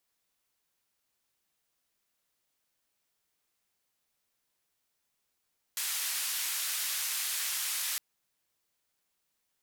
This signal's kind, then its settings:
band-limited noise 1,500–15,000 Hz, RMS −33.5 dBFS 2.21 s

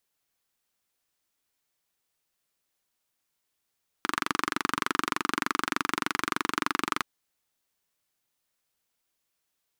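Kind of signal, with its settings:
pulse-train model of a single-cylinder engine, steady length 2.97 s, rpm 2,800, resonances 300/1,200 Hz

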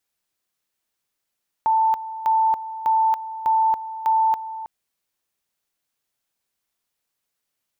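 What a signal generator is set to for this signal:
tone at two levels in turn 887 Hz −15 dBFS, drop 14 dB, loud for 0.28 s, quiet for 0.32 s, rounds 5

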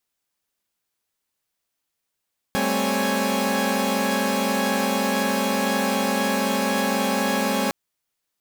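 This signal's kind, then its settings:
held notes G3/A3/C4/C#5/G#5 saw, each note −24.5 dBFS 5.16 s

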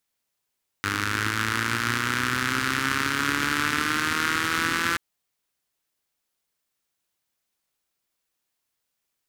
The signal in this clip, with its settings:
pulse-train model of a four-cylinder engine, changing speed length 4.13 s, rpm 3,000, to 5,100, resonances 110/260/1,400 Hz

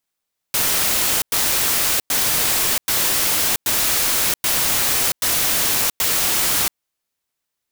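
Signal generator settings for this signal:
noise bursts white, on 0.68 s, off 0.10 s, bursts 8, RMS −18.5 dBFS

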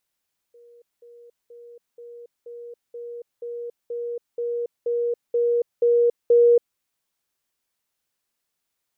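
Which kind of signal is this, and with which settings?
level staircase 475 Hz −47.5 dBFS, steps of 3 dB, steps 13, 0.28 s 0.20 s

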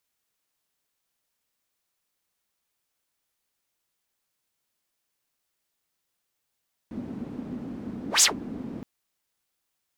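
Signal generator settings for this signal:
pass-by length 1.92 s, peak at 0:01.31, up 0.13 s, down 0.13 s, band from 240 Hz, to 7,400 Hz, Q 4.1, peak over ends 20 dB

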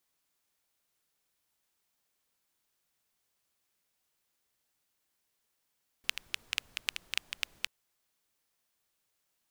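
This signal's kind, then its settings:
rain-like ticks over hiss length 1.63 s, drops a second 7.7, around 2,700 Hz, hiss −23 dB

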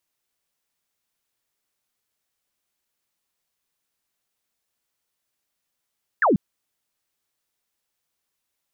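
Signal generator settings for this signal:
single falling chirp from 1,900 Hz, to 160 Hz, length 0.14 s sine, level −14.5 dB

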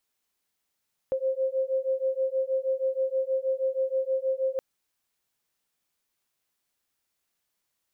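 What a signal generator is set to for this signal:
two tones that beat 525 Hz, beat 6.3 Hz, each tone −27.5 dBFS 3.47 s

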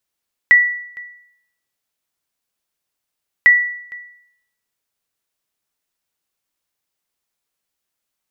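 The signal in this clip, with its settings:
ping with an echo 1,950 Hz, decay 0.70 s, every 2.95 s, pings 2, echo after 0.46 s, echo −24.5 dB −3 dBFS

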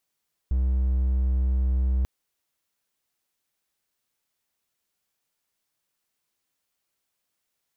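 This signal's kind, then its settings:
tone triangle 64.1 Hz −18 dBFS 1.54 s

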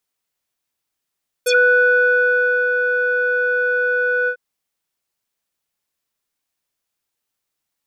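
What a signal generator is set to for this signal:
subtractive voice square B4 12 dB per octave, low-pass 1,400 Hz, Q 6, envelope 3.5 octaves, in 0.09 s, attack 9.8 ms, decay 1.22 s, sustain −6 dB, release 0.08 s, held 2.82 s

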